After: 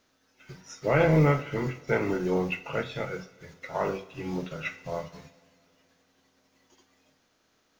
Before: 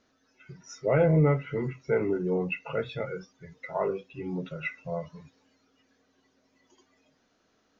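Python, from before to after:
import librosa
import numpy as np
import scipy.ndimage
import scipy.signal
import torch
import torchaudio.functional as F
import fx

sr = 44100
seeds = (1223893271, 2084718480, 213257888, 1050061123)

y = fx.spec_flatten(x, sr, power=0.65)
y = fx.rev_double_slope(y, sr, seeds[0], early_s=0.48, late_s=2.6, knee_db=-17, drr_db=10.5)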